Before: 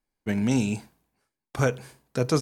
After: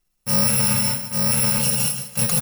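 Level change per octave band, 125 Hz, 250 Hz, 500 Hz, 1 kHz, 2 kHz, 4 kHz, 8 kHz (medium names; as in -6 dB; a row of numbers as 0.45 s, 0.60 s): +3.0 dB, 0.0 dB, -3.5 dB, +5.0 dB, +5.0 dB, +15.0 dB, +20.5 dB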